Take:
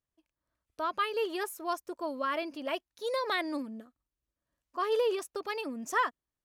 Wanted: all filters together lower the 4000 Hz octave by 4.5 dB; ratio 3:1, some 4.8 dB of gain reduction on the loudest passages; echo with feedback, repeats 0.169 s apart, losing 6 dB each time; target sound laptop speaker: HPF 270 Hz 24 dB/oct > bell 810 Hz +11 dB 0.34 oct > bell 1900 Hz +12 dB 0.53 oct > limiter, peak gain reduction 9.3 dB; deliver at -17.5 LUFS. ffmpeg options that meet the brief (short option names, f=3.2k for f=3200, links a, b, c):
-af "equalizer=f=4k:t=o:g=-8,acompressor=threshold=-31dB:ratio=3,highpass=f=270:w=0.5412,highpass=f=270:w=1.3066,equalizer=f=810:t=o:w=0.34:g=11,equalizer=f=1.9k:t=o:w=0.53:g=12,aecho=1:1:169|338|507|676|845|1014:0.501|0.251|0.125|0.0626|0.0313|0.0157,volume=17dB,alimiter=limit=-7.5dB:level=0:latency=1"